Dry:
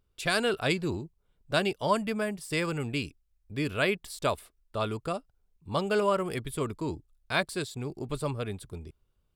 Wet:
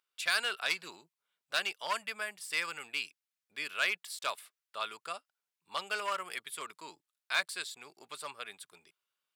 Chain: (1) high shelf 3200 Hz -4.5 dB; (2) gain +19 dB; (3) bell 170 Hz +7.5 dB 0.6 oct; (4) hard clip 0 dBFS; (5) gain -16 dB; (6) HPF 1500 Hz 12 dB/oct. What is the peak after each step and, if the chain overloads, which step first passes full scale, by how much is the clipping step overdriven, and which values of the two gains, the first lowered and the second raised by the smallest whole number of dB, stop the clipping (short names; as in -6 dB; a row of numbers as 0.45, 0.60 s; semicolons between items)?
-13.0, +6.0, +7.0, 0.0, -16.0, -14.5 dBFS; step 2, 7.0 dB; step 2 +12 dB, step 5 -9 dB